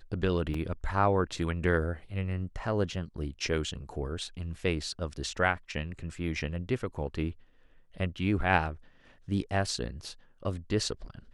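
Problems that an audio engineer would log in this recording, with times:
0.54 s: dropout 4 ms

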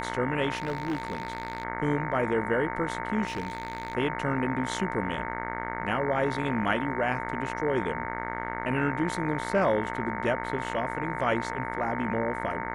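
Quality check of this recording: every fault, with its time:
buzz 60 Hz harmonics 37 -35 dBFS
whine 910 Hz -36 dBFS
0.57–1.63 s: clipped -25.5 dBFS
3.27–3.93 s: clipped -27 dBFS

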